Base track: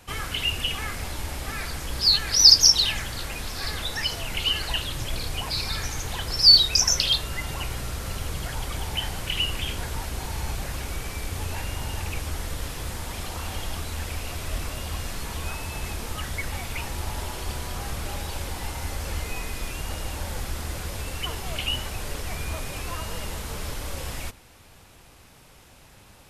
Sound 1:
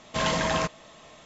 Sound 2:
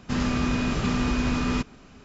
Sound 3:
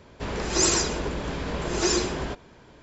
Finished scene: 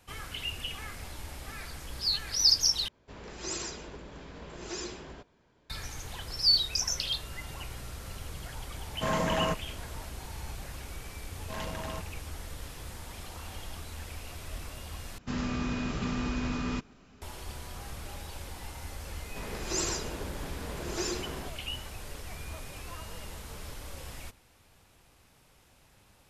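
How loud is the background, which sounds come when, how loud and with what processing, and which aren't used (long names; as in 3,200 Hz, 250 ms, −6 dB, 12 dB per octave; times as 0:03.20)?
base track −10 dB
0:02.88: overwrite with 3 −15.5 dB + dynamic equaliser 3,000 Hz, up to +3 dB, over −38 dBFS, Q 0.89
0:08.87: mix in 1 −1.5 dB + parametric band 4,000 Hz −12 dB 1.7 octaves
0:11.34: mix in 1 −12 dB + adaptive Wiener filter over 25 samples
0:15.18: overwrite with 2 −7.5 dB
0:19.15: mix in 3 −10 dB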